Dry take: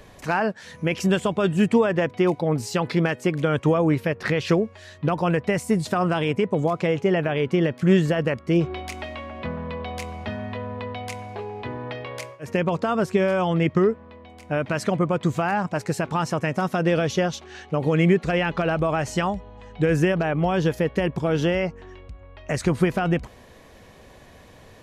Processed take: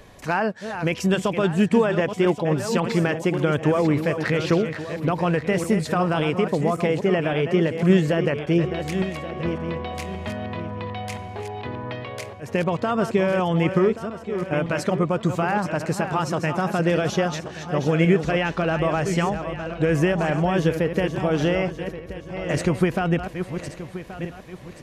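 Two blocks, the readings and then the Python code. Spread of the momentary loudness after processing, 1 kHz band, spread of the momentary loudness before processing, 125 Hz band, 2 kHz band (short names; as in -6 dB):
12 LU, +1.0 dB, 13 LU, +0.5 dB, +1.0 dB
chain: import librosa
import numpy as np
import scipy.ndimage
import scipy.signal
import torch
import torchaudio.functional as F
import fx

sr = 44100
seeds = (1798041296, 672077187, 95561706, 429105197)

y = fx.reverse_delay_fb(x, sr, ms=564, feedback_pct=54, wet_db=-8.5)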